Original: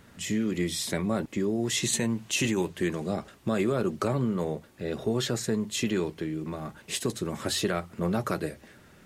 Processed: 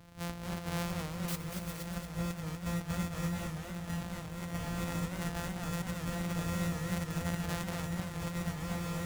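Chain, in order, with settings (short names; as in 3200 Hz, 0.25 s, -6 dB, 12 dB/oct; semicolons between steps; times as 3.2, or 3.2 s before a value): sample sorter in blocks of 256 samples; low shelf 230 Hz +4 dB; diffused feedback echo 0.565 s, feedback 57%, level -7.5 dB; 1.28–1.86 requantised 6-bit, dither triangular; bell 370 Hz -11 dB 0.32 oct; negative-ratio compressor -30 dBFS, ratio -0.5; warbling echo 0.234 s, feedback 52%, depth 179 cents, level -5.5 dB; gain -7 dB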